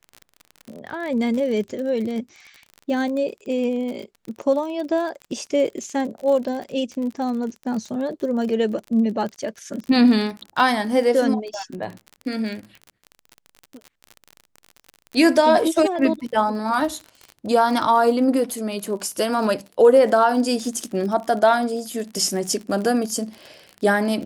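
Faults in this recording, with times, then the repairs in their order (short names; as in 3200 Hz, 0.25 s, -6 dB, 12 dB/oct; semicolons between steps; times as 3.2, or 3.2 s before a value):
crackle 40/s -29 dBFS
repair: de-click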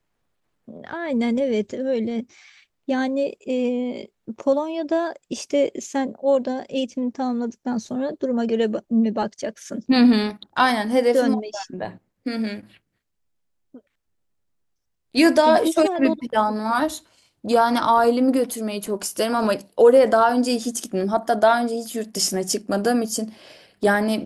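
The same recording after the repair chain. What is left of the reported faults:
none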